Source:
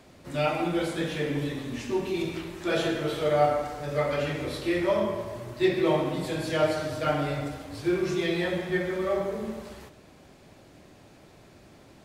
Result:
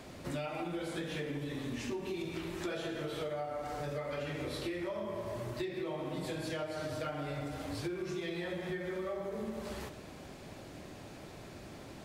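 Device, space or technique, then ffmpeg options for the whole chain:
serial compression, leveller first: -af "acompressor=threshold=-29dB:ratio=2.5,acompressor=threshold=-40dB:ratio=6,volume=4dB"

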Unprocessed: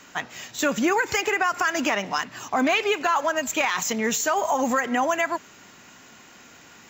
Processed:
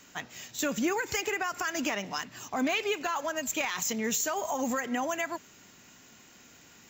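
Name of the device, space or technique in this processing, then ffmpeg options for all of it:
smiley-face EQ: -af "lowshelf=frequency=140:gain=3.5,equalizer=frequency=1100:width_type=o:width=1.9:gain=-4.5,highshelf=frequency=7600:gain=6,volume=-6dB"

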